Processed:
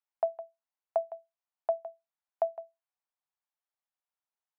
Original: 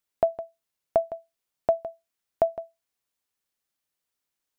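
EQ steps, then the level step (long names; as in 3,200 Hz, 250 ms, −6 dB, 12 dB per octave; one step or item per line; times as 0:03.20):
four-pole ladder high-pass 640 Hz, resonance 40%
low-pass filter 1,400 Hz 6 dB per octave
+1.0 dB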